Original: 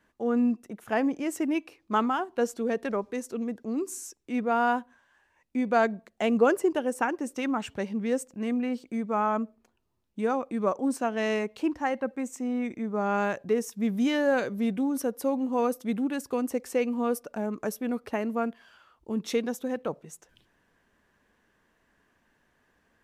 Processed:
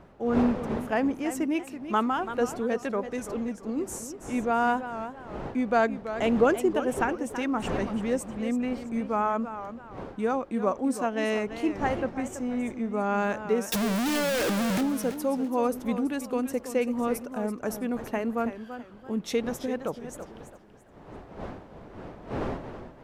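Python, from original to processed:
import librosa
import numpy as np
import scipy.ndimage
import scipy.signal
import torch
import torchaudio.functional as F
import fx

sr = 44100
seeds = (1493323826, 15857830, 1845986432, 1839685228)

y = fx.clip_1bit(x, sr, at=(13.72, 14.81))
y = fx.dmg_wind(y, sr, seeds[0], corner_hz=570.0, level_db=-42.0)
y = fx.echo_warbled(y, sr, ms=332, feedback_pct=32, rate_hz=2.8, cents=131, wet_db=-11.0)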